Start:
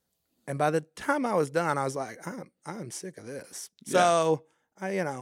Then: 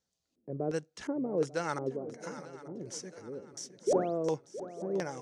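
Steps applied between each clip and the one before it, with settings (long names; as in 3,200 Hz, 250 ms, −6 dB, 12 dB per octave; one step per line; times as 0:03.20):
sound drawn into the spectrogram rise, 0:03.87–0:04.18, 350–9,100 Hz −18 dBFS
auto-filter low-pass square 1.4 Hz 400–6,200 Hz
feedback echo with a long and a short gap by turns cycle 892 ms, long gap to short 3 to 1, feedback 37%, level −14 dB
level −7 dB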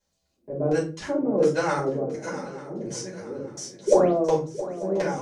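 rectangular room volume 160 cubic metres, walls furnished, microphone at 5 metres
level −1 dB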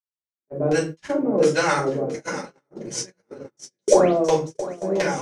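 parametric band 2,500 Hz +6.5 dB 1.7 octaves
noise gate −31 dBFS, range −40 dB
high-shelf EQ 4,400 Hz +8 dB
level +2 dB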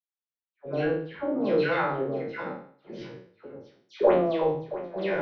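peak hold with a decay on every bin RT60 0.51 s
Butterworth low-pass 3,900 Hz 48 dB per octave
all-pass dispersion lows, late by 136 ms, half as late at 1,800 Hz
level −7 dB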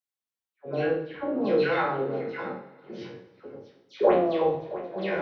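high-pass filter 45 Hz
coupled-rooms reverb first 0.2 s, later 2.5 s, from −19 dB, DRR 8 dB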